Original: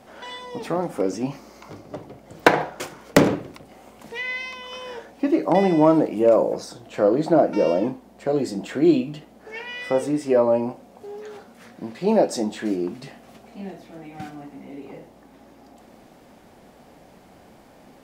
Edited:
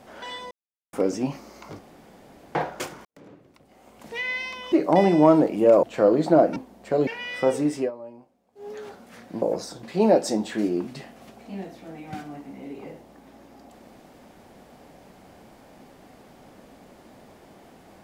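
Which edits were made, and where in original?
0.51–0.93 mute
1.79–2.55 room tone
3.05–4.16 fade in quadratic
4.72–5.31 cut
6.42–6.83 move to 11.9
7.56–7.91 cut
8.42–9.55 cut
10.25–11.17 dip -21 dB, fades 0.14 s

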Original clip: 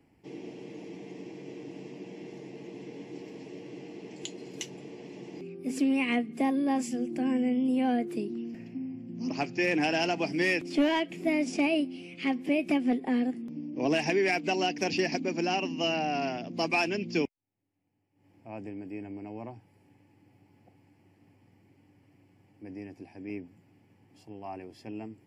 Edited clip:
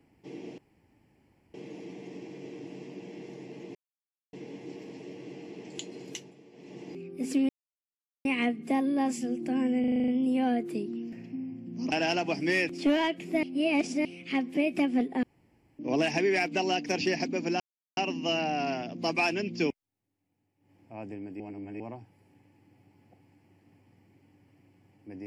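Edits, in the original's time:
0.58 insert room tone 0.96 s
2.79 insert silence 0.58 s
4.52–5.26 dip -10.5 dB, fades 0.28 s
5.95 insert silence 0.76 s
7.5 stutter 0.04 s, 8 plays
9.34–9.84 cut
11.35–11.97 reverse
13.15–13.71 room tone
15.52 insert silence 0.37 s
18.95–19.35 reverse

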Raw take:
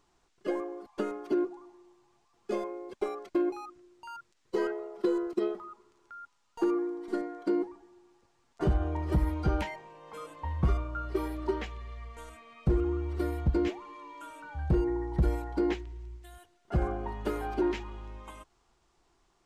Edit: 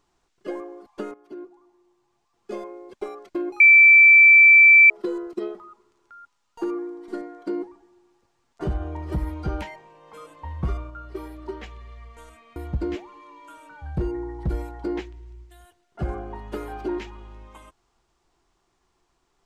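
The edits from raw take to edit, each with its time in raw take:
1.14–2.71 fade in, from -14.5 dB
3.6–4.9 bleep 2330 Hz -8 dBFS
10.9–11.63 gain -3.5 dB
12.56–13.29 cut

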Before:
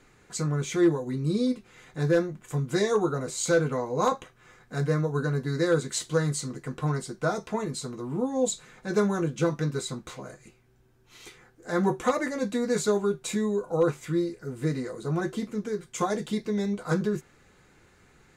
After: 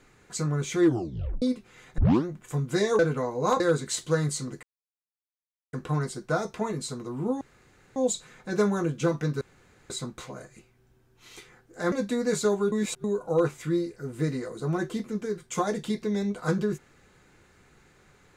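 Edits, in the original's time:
0.85 tape stop 0.57 s
1.98 tape start 0.27 s
2.99–3.54 cut
4.15–5.63 cut
6.66 insert silence 1.10 s
8.34 insert room tone 0.55 s
9.79 insert room tone 0.49 s
11.81–12.35 cut
13.15–13.47 reverse

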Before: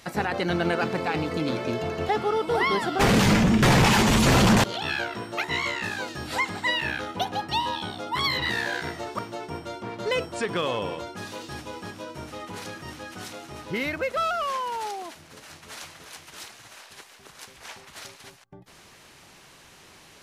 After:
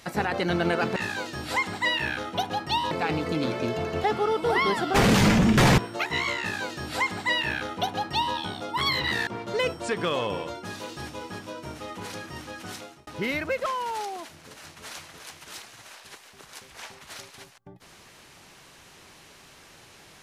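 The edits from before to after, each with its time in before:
3.83–5.16 cut
5.78–7.73 copy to 0.96
8.65–9.79 cut
13.28–13.59 fade out
14.18–14.52 cut

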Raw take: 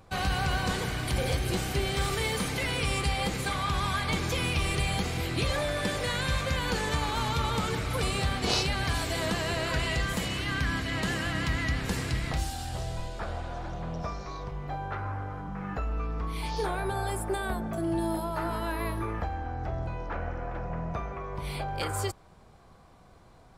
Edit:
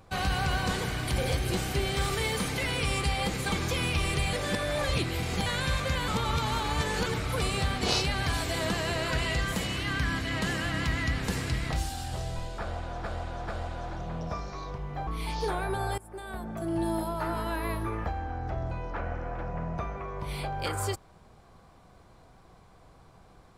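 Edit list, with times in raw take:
3.52–4.13 cut
4.94–6.07 reverse
6.69–7.67 reverse
13.21–13.65 loop, 3 plays
14.8–16.23 cut
17.14–17.99 fade in, from -22 dB

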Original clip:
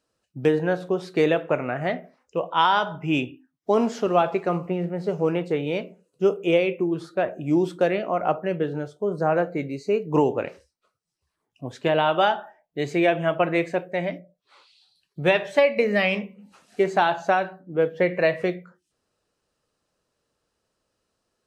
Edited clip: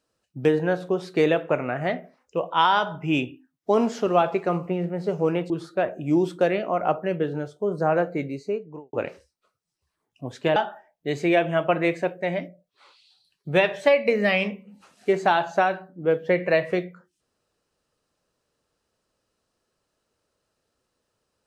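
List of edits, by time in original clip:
5.5–6.9 cut
9.61–10.33 studio fade out
11.96–12.27 cut

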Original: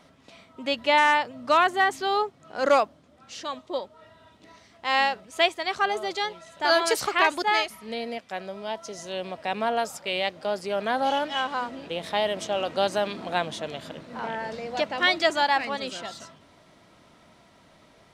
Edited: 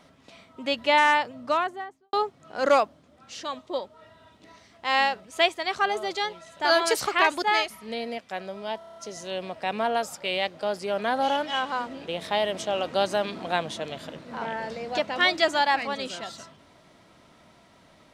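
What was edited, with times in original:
1.21–2.13 studio fade out
8.78 stutter 0.03 s, 7 plays

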